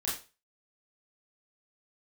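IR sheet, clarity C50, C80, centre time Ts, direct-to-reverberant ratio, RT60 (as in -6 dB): 5.5 dB, 11.5 dB, 38 ms, -7.0 dB, 0.35 s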